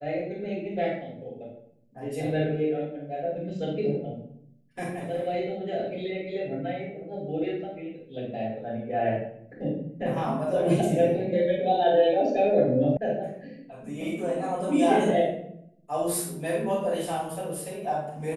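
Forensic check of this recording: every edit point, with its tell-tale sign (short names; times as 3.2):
12.97 sound cut off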